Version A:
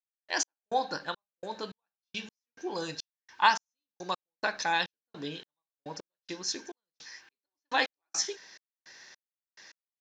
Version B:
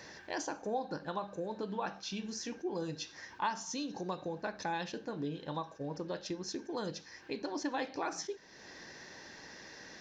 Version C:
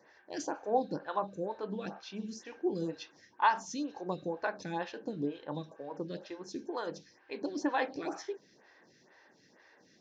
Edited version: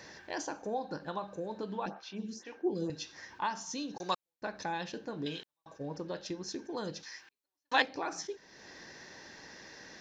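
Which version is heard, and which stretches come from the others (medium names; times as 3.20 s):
B
1.86–2.90 s: from C
3.98–4.42 s: from A
5.26–5.66 s: from A
7.03–7.82 s: from A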